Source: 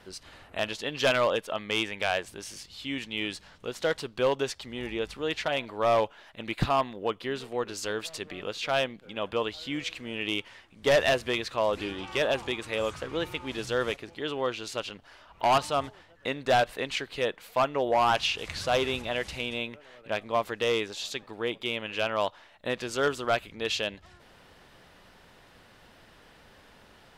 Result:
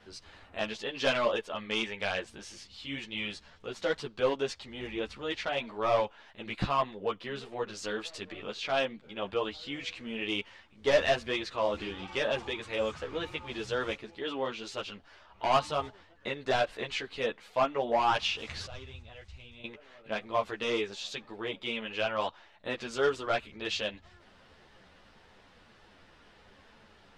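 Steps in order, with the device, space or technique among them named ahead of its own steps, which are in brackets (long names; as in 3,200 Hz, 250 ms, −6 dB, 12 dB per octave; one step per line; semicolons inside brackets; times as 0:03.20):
0:18.66–0:19.64: drawn EQ curve 100 Hz 0 dB, 200 Hz −19 dB, 7,600 Hz −14 dB, 11,000 Hz −19 dB
string-machine ensemble chorus (string-ensemble chorus; low-pass filter 6,600 Hz 12 dB per octave)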